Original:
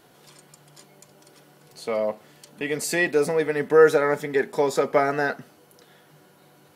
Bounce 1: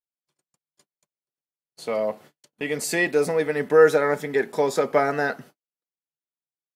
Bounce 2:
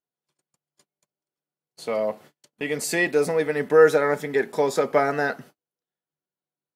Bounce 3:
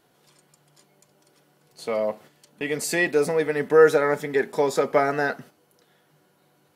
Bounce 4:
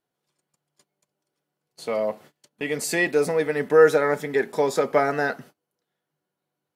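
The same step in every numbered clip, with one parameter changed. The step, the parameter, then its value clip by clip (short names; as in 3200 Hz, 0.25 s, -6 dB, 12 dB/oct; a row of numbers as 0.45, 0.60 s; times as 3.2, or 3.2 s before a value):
gate, range: -56, -41, -8, -28 dB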